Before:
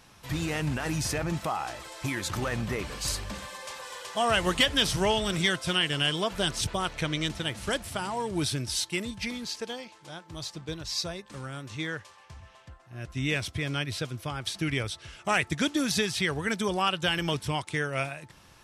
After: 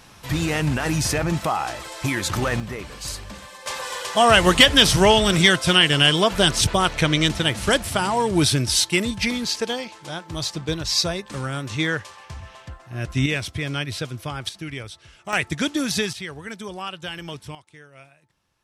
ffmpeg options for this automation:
ffmpeg -i in.wav -af "asetnsamples=nb_out_samples=441:pad=0,asendcmd='2.6 volume volume -0.5dB;3.66 volume volume 10.5dB;13.26 volume volume 4dB;14.49 volume volume -3.5dB;15.33 volume volume 3.5dB;16.13 volume volume -5.5dB;17.55 volume volume -17dB',volume=7.5dB" out.wav

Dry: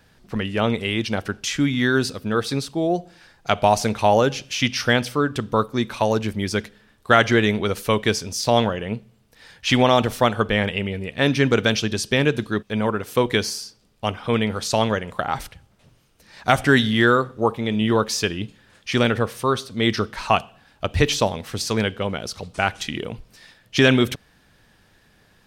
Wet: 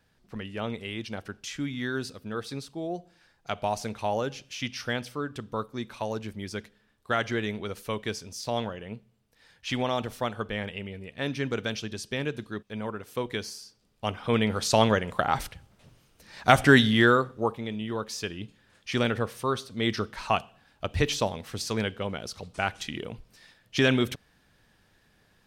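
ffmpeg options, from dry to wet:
ffmpeg -i in.wav -af "volume=6dB,afade=type=in:start_time=13.6:duration=1.2:silence=0.281838,afade=type=out:start_time=16.71:duration=1.15:silence=0.223872,afade=type=in:start_time=17.86:duration=1.05:silence=0.446684" out.wav

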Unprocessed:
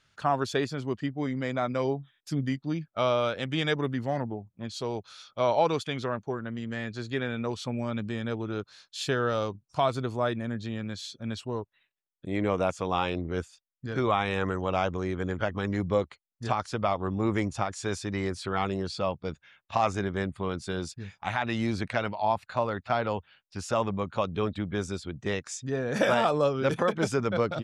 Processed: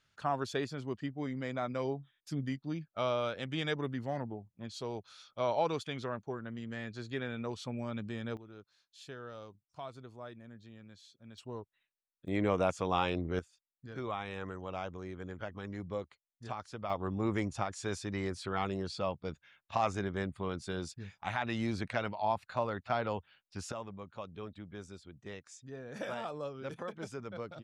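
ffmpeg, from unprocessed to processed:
ffmpeg -i in.wav -af "asetnsamples=nb_out_samples=441:pad=0,asendcmd='8.37 volume volume -19dB;11.38 volume volume -10dB;12.28 volume volume -3dB;13.39 volume volume -12.5dB;16.9 volume volume -5.5dB;23.72 volume volume -15.5dB',volume=-7dB" out.wav

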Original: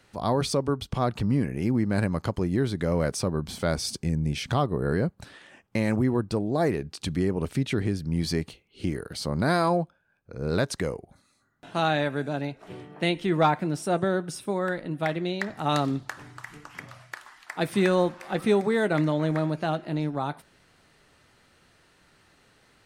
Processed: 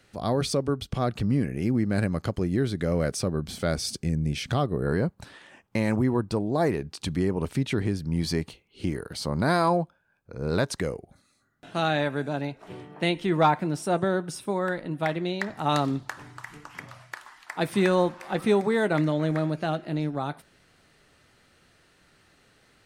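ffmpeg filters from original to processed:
ffmpeg -i in.wav -af "asetnsamples=nb_out_samples=441:pad=0,asendcmd='4.87 equalizer g 3.5;10.81 equalizer g -5.5;11.95 equalizer g 3;18.98 equalizer g -4',equalizer=frequency=950:width_type=o:width=0.38:gain=-7.5" out.wav

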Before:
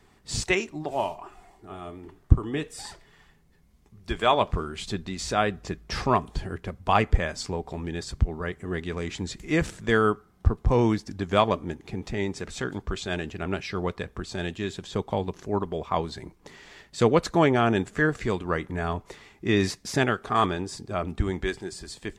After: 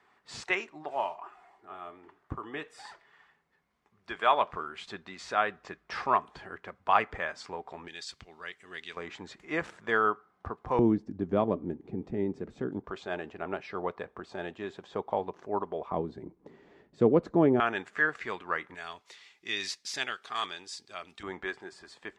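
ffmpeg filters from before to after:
ffmpeg -i in.wav -af "asetnsamples=nb_out_samples=441:pad=0,asendcmd='7.88 bandpass f 3400;8.97 bandpass f 1100;10.79 bandpass f 290;12.84 bandpass f 800;15.92 bandpass f 310;17.6 bandpass f 1600;18.75 bandpass f 3900;21.23 bandpass f 1200',bandpass=frequency=1300:width_type=q:width=0.99:csg=0" out.wav

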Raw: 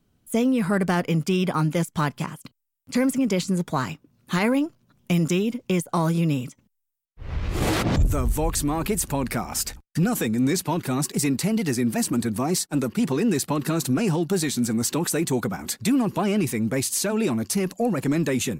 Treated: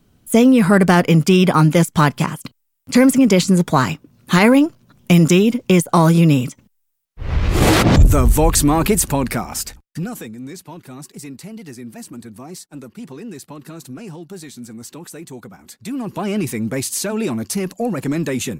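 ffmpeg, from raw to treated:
ffmpeg -i in.wav -af "volume=23dB,afade=type=out:start_time=8.77:duration=0.88:silence=0.334965,afade=type=out:start_time=9.65:duration=0.72:silence=0.266073,afade=type=in:start_time=15.77:duration=0.6:silence=0.223872" out.wav

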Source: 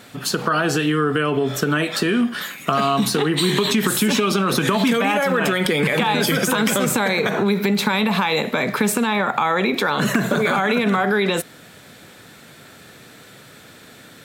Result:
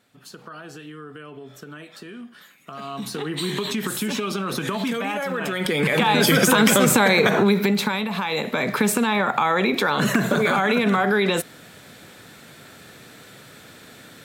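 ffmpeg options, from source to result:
ffmpeg -i in.wav -af "volume=10dB,afade=type=in:start_time=2.68:duration=0.74:silence=0.237137,afade=type=in:start_time=5.48:duration=0.93:silence=0.298538,afade=type=out:start_time=7.27:duration=0.81:silence=0.281838,afade=type=in:start_time=8.08:duration=0.72:silence=0.446684" out.wav

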